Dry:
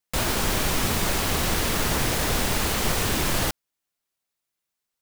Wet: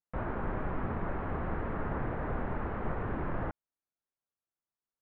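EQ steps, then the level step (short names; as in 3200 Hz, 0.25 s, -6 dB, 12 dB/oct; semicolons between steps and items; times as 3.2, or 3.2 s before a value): LPF 1600 Hz 24 dB/oct; air absorption 160 m; -8.0 dB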